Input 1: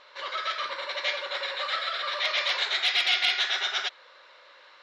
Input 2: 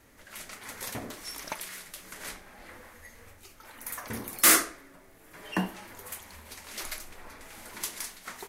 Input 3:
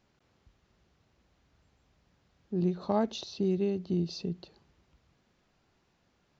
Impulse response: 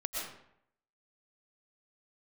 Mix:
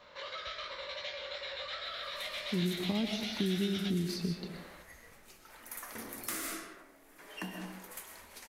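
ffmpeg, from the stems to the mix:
-filter_complex "[0:a]equalizer=frequency=510:width=1.5:gain=8.5,flanger=delay=17:depth=3.8:speed=2.7,volume=-4dB,asplit=2[link_01][link_02];[link_02]volume=-13.5dB[link_03];[1:a]adelay=1850,volume=-9dB,asplit=2[link_04][link_05];[link_05]volume=-3.5dB[link_06];[2:a]volume=0dB,asplit=2[link_07][link_08];[link_08]volume=-5dB[link_09];[link_01][link_04]amix=inputs=2:normalize=0,highpass=200,acompressor=threshold=-35dB:ratio=6,volume=0dB[link_10];[3:a]atrim=start_sample=2205[link_11];[link_03][link_06][link_09]amix=inputs=3:normalize=0[link_12];[link_12][link_11]afir=irnorm=-1:irlink=0[link_13];[link_07][link_10][link_13]amix=inputs=3:normalize=0,equalizer=frequency=120:width=3.6:gain=-4.5,acrossover=split=290|2100[link_14][link_15][link_16];[link_14]acompressor=threshold=-31dB:ratio=4[link_17];[link_15]acompressor=threshold=-45dB:ratio=4[link_18];[link_16]acompressor=threshold=-39dB:ratio=4[link_19];[link_17][link_18][link_19]amix=inputs=3:normalize=0"

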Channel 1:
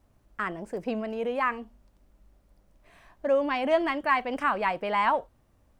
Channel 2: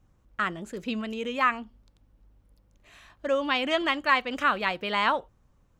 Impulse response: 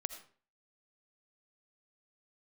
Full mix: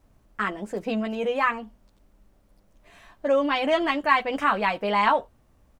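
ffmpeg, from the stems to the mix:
-filter_complex "[0:a]volume=2.5dB[link_01];[1:a]aecho=1:1:4.5:0.99,adelay=9.8,volume=-6.5dB[link_02];[link_01][link_02]amix=inputs=2:normalize=0"

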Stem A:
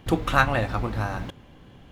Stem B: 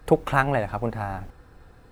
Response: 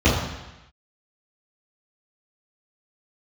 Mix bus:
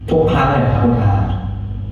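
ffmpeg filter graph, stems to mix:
-filter_complex "[0:a]highpass=150,equalizer=frequency=3200:width=7:gain=8.5,volume=-12dB,asplit=2[link_01][link_02];[link_02]volume=-5.5dB[link_03];[1:a]aeval=exprs='val(0)+0.0126*(sin(2*PI*50*n/s)+sin(2*PI*2*50*n/s)/2+sin(2*PI*3*50*n/s)/3+sin(2*PI*4*50*n/s)/4+sin(2*PI*5*50*n/s)/5)':channel_layout=same,volume=-5dB,asplit=2[link_04][link_05];[link_05]volume=-9dB[link_06];[2:a]atrim=start_sample=2205[link_07];[link_03][link_06]amix=inputs=2:normalize=0[link_08];[link_08][link_07]afir=irnorm=-1:irlink=0[link_09];[link_01][link_04][link_09]amix=inputs=3:normalize=0,alimiter=limit=-4.5dB:level=0:latency=1:release=86"

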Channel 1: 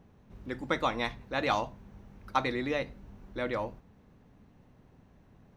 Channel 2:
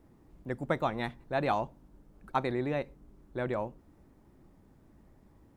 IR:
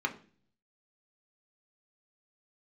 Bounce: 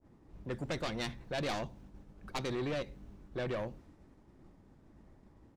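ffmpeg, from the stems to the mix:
-filter_complex "[0:a]aeval=exprs='0.237*(cos(1*acos(clip(val(0)/0.237,-1,1)))-cos(1*PI/2))+0.106*(cos(4*acos(clip(val(0)/0.237,-1,1)))-cos(4*PI/2))':channel_layout=same,volume=-9dB[link_01];[1:a]lowpass=7300,agate=range=-33dB:threshold=-56dB:ratio=3:detection=peak,adelay=1.2,volume=2dB,asplit=2[link_02][link_03];[link_03]apad=whole_len=245476[link_04];[link_01][link_04]sidechaingate=range=-33dB:threshold=-54dB:ratio=16:detection=peak[link_05];[link_05][link_02]amix=inputs=2:normalize=0,acrossover=split=420|3000[link_06][link_07][link_08];[link_07]acompressor=threshold=-37dB:ratio=2.5[link_09];[link_06][link_09][link_08]amix=inputs=3:normalize=0,asoftclip=type=tanh:threshold=-31dB,adynamicequalizer=threshold=0.00224:dfrequency=1800:dqfactor=0.7:tfrequency=1800:tqfactor=0.7:attack=5:release=100:ratio=0.375:range=2.5:mode=boostabove:tftype=highshelf"

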